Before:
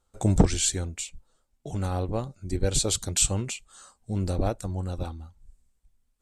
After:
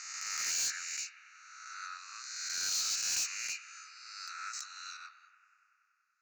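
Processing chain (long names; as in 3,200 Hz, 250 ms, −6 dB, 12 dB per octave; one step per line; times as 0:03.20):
peak hold with a rise ahead of every peak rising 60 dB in 1.61 s
Butterworth band-reject 3,300 Hz, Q 2.2
0:04.53–0:04.97: high-shelf EQ 2,500 Hz +10.5 dB
Chebyshev band-pass filter 1,300–6,700 Hz, order 5
bucket-brigade delay 95 ms, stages 2,048, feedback 81%, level −16 dB
soft clipping −29 dBFS, distortion −9 dB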